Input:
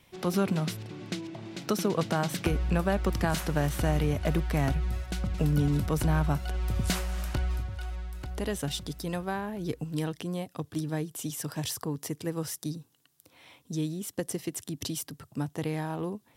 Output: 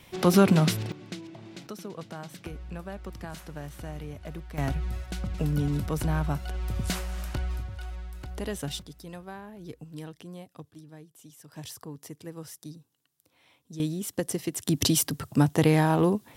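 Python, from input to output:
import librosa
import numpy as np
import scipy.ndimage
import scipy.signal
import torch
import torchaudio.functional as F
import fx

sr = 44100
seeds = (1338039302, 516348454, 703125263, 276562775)

y = fx.gain(x, sr, db=fx.steps((0.0, 8.0), (0.92, -4.0), (1.67, -12.0), (4.58, -1.5), (8.82, -9.0), (10.71, -16.0), (11.53, -8.0), (13.8, 3.0), (14.67, 11.0)))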